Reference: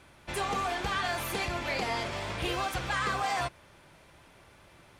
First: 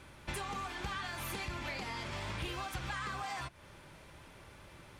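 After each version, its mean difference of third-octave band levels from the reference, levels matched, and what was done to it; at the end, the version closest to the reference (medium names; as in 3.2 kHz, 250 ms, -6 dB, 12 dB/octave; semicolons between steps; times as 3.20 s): 4.5 dB: compression, threshold -38 dBFS, peak gain reduction 11 dB; bass shelf 160 Hz +4 dB; band-stop 700 Hz, Q 12; dynamic bell 480 Hz, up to -6 dB, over -58 dBFS, Q 2.3; trim +1 dB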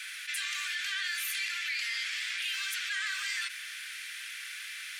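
21.0 dB: steep high-pass 1.6 kHz 48 dB/octave; level flattener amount 70%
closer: first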